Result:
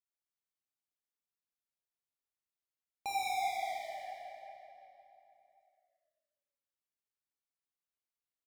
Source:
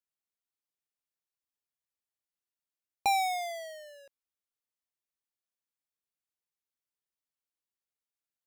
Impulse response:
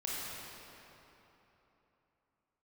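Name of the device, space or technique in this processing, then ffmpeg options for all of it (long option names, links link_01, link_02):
cave: -filter_complex "[0:a]aecho=1:1:170:0.335[link_01];[1:a]atrim=start_sample=2205[link_02];[link_01][link_02]afir=irnorm=-1:irlink=0,volume=-8.5dB"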